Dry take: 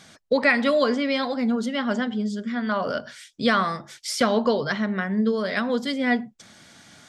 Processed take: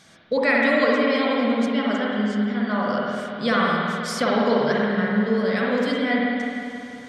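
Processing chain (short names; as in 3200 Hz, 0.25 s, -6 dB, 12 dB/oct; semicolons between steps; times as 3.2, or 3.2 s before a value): spring tank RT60 2.7 s, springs 47/53 ms, chirp 55 ms, DRR -4 dB; gain -3 dB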